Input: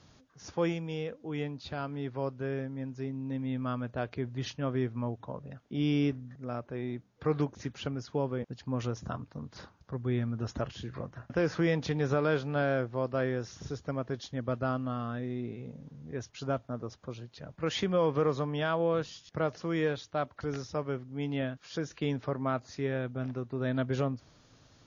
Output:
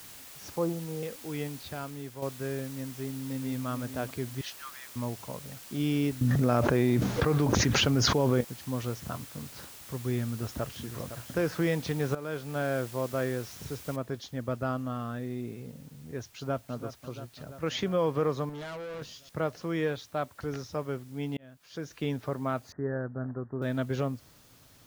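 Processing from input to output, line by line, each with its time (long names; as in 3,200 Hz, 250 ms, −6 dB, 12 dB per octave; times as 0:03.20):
0:00.50–0:01.03: Butterworth low-pass 1,300 Hz 48 dB per octave
0:01.57–0:02.22: fade out, to −7 dB
0:02.98–0:03.66: delay throw 440 ms, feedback 25%, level −10.5 dB
0:04.41–0:04.96: Butterworth high-pass 1,100 Hz 48 dB per octave
0:06.21–0:08.41: envelope flattener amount 100%
0:10.28–0:10.94: delay throw 510 ms, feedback 15%, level −10.5 dB
0:12.15–0:12.99: fade in equal-power, from −14 dB
0:13.96: noise floor change −48 dB −61 dB
0:16.32–0:16.74: delay throw 340 ms, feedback 70%, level −11 dB
0:18.49–0:19.02: tube saturation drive 37 dB, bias 0.4
0:21.37–0:22.01: fade in
0:22.72–0:23.62: Butterworth low-pass 1,800 Hz 96 dB per octave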